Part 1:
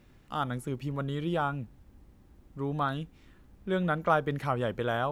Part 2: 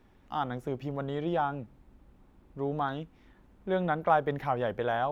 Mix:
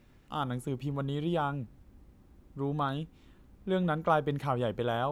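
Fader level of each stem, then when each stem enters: -2.0, -10.5 dB; 0.00, 0.00 s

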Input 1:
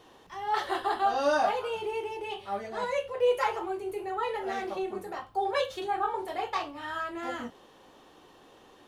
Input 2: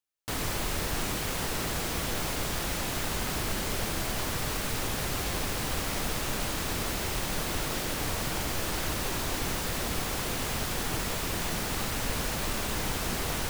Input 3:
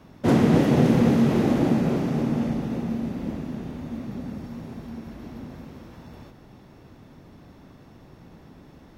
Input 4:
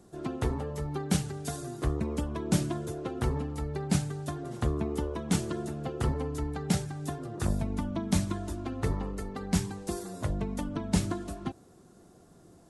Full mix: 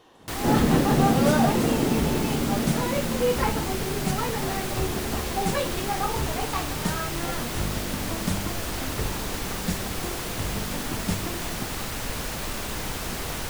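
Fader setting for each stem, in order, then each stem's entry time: +0.5, 0.0, -3.0, -1.5 dB; 0.00, 0.00, 0.20, 0.15 s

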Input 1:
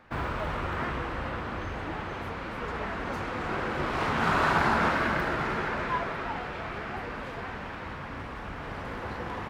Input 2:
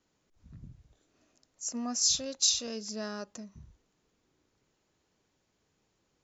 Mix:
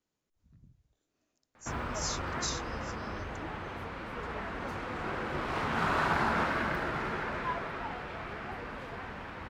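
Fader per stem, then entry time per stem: -4.5, -10.5 dB; 1.55, 0.00 s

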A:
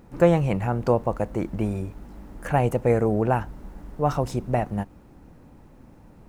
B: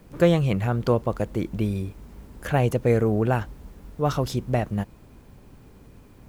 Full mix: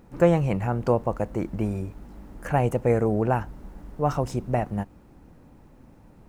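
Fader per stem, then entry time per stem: -2.0, -19.5 dB; 0.00, 0.00 s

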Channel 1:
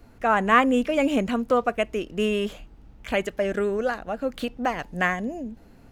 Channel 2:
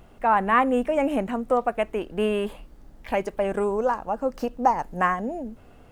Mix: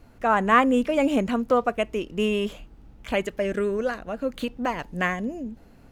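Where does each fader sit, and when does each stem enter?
-1.0, -12.0 dB; 0.00, 0.00 s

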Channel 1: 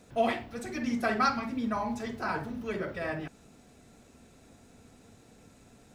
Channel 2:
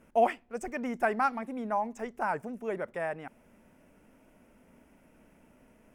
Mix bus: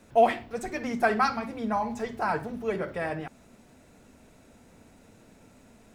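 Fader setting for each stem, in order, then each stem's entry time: -1.5, +2.0 dB; 0.00, 0.00 s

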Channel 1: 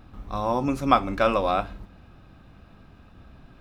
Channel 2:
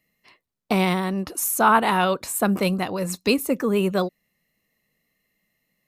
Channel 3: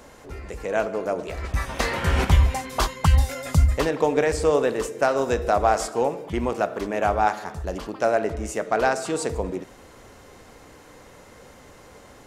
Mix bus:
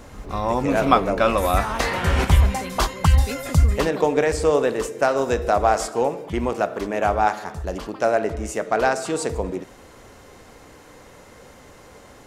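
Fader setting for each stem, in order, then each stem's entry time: +2.5, -12.5, +1.5 dB; 0.00, 0.00, 0.00 s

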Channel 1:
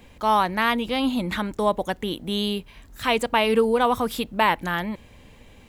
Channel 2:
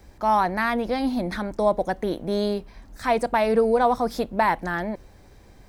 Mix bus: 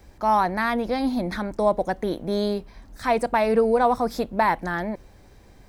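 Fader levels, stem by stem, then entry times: -20.0, -0.5 dB; 0.00, 0.00 s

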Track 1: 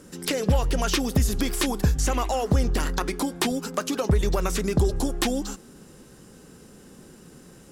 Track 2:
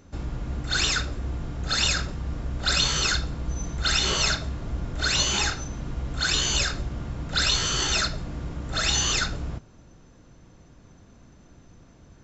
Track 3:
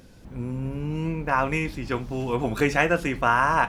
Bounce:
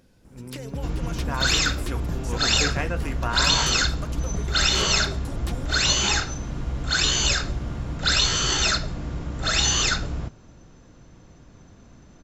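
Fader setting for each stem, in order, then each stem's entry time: -12.5, +2.5, -8.5 dB; 0.25, 0.70, 0.00 s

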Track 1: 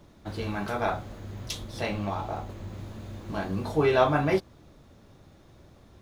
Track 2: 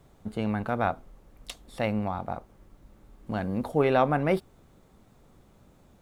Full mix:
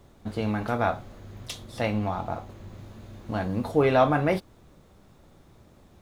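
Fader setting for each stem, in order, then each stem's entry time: -4.0, +0.5 dB; 0.00, 0.00 s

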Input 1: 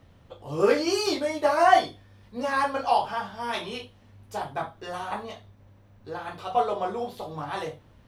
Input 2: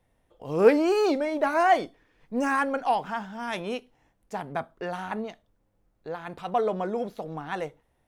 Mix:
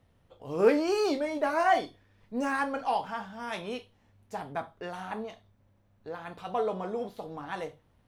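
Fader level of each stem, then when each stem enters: -11.5, -5.0 dB; 0.00, 0.00 s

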